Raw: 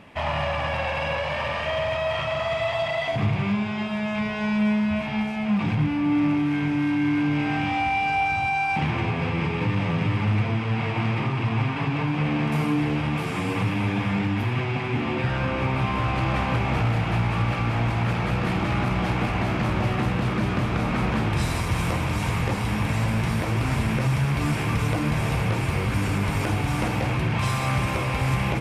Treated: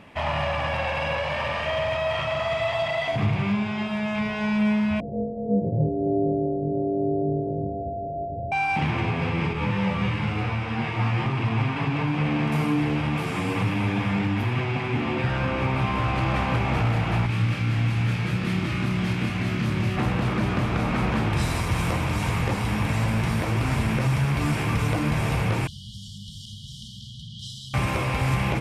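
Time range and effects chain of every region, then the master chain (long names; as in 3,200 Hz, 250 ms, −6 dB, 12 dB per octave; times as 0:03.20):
0:05.00–0:08.52: samples sorted by size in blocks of 64 samples + Butterworth low-pass 620 Hz 48 dB per octave + double-tracking delay 25 ms −7 dB
0:09.53–0:11.26: flutter between parallel walls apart 4.4 metres, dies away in 0.52 s + string-ensemble chorus
0:17.26–0:19.97: high-pass filter 86 Hz + parametric band 750 Hz −12.5 dB 1.7 octaves + double-tracking delay 27 ms −3.5 dB
0:25.67–0:27.74: linear-phase brick-wall band-stop 240–2,900 Hz + three-way crossover with the lows and the highs turned down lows −16 dB, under 570 Hz, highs −17 dB, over 6,400 Hz
whole clip: no processing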